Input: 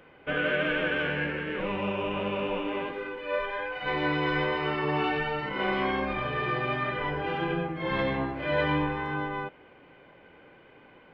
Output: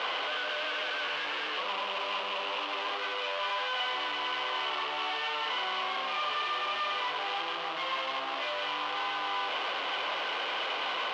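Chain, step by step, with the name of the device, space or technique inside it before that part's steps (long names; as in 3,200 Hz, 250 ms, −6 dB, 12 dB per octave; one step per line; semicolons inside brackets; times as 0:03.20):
0:01.23–0:01.98: parametric band 120 Hz −14 dB 0.36 octaves
home computer beeper (sign of each sample alone; loudspeaker in its box 690–4,100 Hz, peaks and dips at 690 Hz +4 dB, 1,100 Hz +7 dB, 1,700 Hz −3 dB, 3,000 Hz +8 dB)
level −2.5 dB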